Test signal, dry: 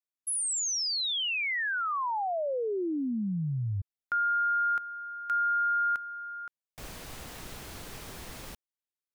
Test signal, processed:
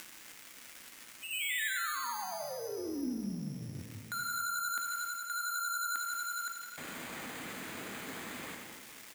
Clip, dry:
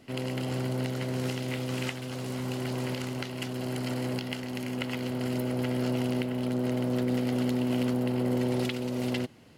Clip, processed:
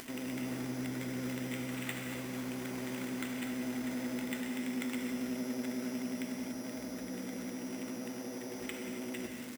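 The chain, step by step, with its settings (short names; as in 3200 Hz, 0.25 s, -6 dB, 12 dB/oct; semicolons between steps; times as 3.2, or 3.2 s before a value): octaver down 2 oct, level -4 dB; HPF 160 Hz 12 dB/oct; vibrato 11 Hz 58 cents; careless resampling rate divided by 8×, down filtered, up hold; crackle 490/s -45 dBFS; reverse; compressor 5:1, threshold -41 dBFS; reverse; tilt shelf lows -5.5 dB, about 1200 Hz; on a send: feedback echo 0.447 s, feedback 31%, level -17 dB; on the sum: upward compressor 4:1, threshold -43 dBFS; graphic EQ 250/2000/4000 Hz +8/+4/-4 dB; non-linear reverb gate 0.31 s flat, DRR 2 dB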